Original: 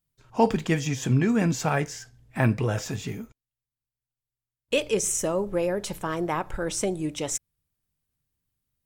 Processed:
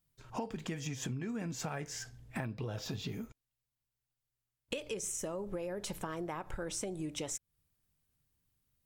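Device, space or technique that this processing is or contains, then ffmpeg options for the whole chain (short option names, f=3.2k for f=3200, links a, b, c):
serial compression, leveller first: -filter_complex "[0:a]asettb=1/sr,asplit=3[a][b][c];[a]atrim=end=2.454[d];[b]atrim=start=2.45:end=3.13,asetpts=PTS-STARTPTS,afade=t=in:d=0.004:c=qsin,afade=t=out:st=0.676:d=0.004:c=qsin,equalizer=f=2k:t=o:w=1:g=-7,equalizer=f=4k:t=o:w=1:g=9,equalizer=f=8k:t=o:w=1:g=-11[e];[c]atrim=start=3.126[f];[d][e]acrossfade=d=0.004:c1=hsin:c2=qsin[g];[g][f]acrossfade=d=0.004:c1=qsin:c2=hsin,acompressor=threshold=-27dB:ratio=2.5,acompressor=threshold=-38dB:ratio=6,volume=1.5dB"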